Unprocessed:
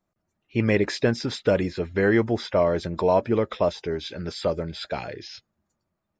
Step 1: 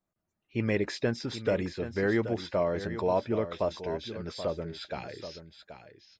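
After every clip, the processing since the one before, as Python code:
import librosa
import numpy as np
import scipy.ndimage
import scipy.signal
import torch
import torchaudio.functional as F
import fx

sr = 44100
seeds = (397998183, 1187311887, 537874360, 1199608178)

y = x + 10.0 ** (-11.0 / 20.0) * np.pad(x, (int(779 * sr / 1000.0), 0))[:len(x)]
y = F.gain(torch.from_numpy(y), -7.0).numpy()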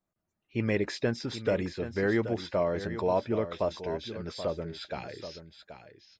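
y = x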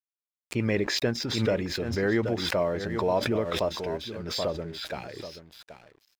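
y = np.sign(x) * np.maximum(np.abs(x) - 10.0 ** (-56.5 / 20.0), 0.0)
y = fx.pre_swell(y, sr, db_per_s=46.0)
y = F.gain(torch.from_numpy(y), 1.5).numpy()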